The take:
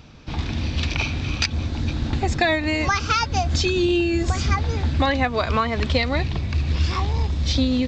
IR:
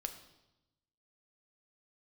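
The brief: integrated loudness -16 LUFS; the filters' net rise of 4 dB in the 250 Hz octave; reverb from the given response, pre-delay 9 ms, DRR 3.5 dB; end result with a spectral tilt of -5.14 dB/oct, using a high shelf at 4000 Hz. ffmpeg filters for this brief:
-filter_complex "[0:a]equalizer=f=250:t=o:g=5,highshelf=f=4k:g=-3.5,asplit=2[a][b];[1:a]atrim=start_sample=2205,adelay=9[c];[b][c]afir=irnorm=-1:irlink=0,volume=-2dB[d];[a][d]amix=inputs=2:normalize=0,volume=4dB"

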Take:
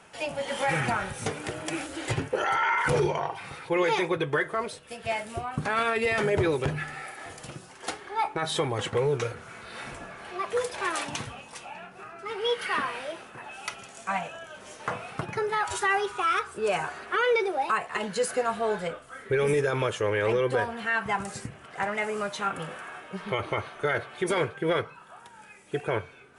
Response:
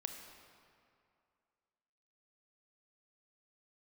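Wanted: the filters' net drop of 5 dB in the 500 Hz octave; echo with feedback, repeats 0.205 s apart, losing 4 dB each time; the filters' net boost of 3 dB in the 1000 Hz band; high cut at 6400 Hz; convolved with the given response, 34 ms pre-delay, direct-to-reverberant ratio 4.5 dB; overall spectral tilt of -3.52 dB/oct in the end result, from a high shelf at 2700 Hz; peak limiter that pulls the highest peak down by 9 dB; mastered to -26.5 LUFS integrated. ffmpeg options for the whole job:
-filter_complex "[0:a]lowpass=6.4k,equalizer=f=500:t=o:g=-7.5,equalizer=f=1k:t=o:g=7,highshelf=f=2.7k:g=-6.5,alimiter=limit=-21.5dB:level=0:latency=1,aecho=1:1:205|410|615|820|1025|1230|1435|1640|1845:0.631|0.398|0.25|0.158|0.0994|0.0626|0.0394|0.0249|0.0157,asplit=2[a][b];[1:a]atrim=start_sample=2205,adelay=34[c];[b][c]afir=irnorm=-1:irlink=0,volume=-3dB[d];[a][d]amix=inputs=2:normalize=0,volume=3dB"

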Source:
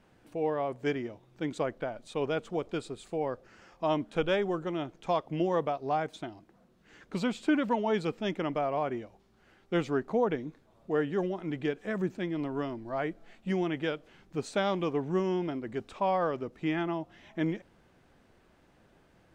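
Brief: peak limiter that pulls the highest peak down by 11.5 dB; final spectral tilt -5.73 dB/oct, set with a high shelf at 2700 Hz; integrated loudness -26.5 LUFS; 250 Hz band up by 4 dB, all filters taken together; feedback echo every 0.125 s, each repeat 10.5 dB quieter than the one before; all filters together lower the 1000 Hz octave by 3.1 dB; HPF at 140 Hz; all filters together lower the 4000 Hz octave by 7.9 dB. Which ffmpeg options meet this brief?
-af "highpass=140,equalizer=f=250:t=o:g=6.5,equalizer=f=1k:t=o:g=-4,highshelf=f=2.7k:g=-4.5,equalizer=f=4k:t=o:g=-7,alimiter=level_in=1dB:limit=-24dB:level=0:latency=1,volume=-1dB,aecho=1:1:125|250|375:0.299|0.0896|0.0269,volume=8dB"

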